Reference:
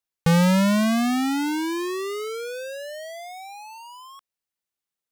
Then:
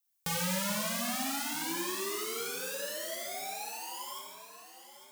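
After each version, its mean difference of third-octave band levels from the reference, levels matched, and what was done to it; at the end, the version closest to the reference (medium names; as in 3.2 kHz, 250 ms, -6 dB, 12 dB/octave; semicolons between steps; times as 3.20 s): 16.0 dB: RIAA curve recording; compression 2:1, threshold -29 dBFS, peak gain reduction 9 dB; echo whose repeats swap between lows and highs 427 ms, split 1.3 kHz, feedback 68%, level -9.5 dB; gated-style reverb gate 330 ms falling, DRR -3 dB; trim -8 dB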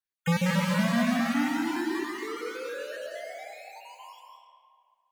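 9.5 dB: random holes in the spectrogram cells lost 34%; peaking EQ 1.8 kHz +7 dB 0.71 oct; flange 1.9 Hz, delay 7.4 ms, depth 4.5 ms, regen +66%; algorithmic reverb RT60 2.1 s, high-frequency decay 0.6×, pre-delay 115 ms, DRR -0.5 dB; trim -2.5 dB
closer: second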